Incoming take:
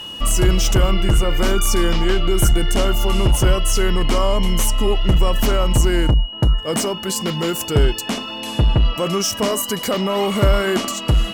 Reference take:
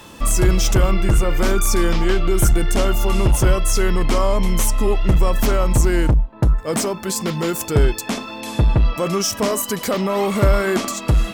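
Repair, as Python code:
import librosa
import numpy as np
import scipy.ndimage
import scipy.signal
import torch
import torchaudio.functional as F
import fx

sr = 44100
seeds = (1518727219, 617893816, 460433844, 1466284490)

y = fx.notch(x, sr, hz=2900.0, q=30.0)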